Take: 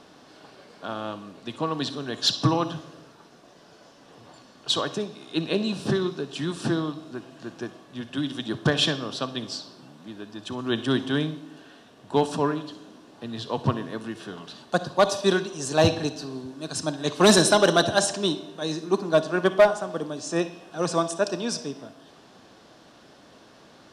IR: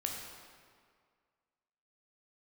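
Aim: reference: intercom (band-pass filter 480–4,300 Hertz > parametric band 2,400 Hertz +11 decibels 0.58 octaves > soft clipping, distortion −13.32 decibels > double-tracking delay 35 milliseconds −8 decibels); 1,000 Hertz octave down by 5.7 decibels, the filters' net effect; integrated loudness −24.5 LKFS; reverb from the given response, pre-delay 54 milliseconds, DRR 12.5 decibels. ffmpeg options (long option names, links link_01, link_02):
-filter_complex "[0:a]equalizer=frequency=1000:width_type=o:gain=-8,asplit=2[link_01][link_02];[1:a]atrim=start_sample=2205,adelay=54[link_03];[link_02][link_03]afir=irnorm=-1:irlink=0,volume=-14.5dB[link_04];[link_01][link_04]amix=inputs=2:normalize=0,highpass=480,lowpass=4300,equalizer=frequency=2400:width_type=o:width=0.58:gain=11,asoftclip=threshold=-16.5dB,asplit=2[link_05][link_06];[link_06]adelay=35,volume=-8dB[link_07];[link_05][link_07]amix=inputs=2:normalize=0,volume=5dB"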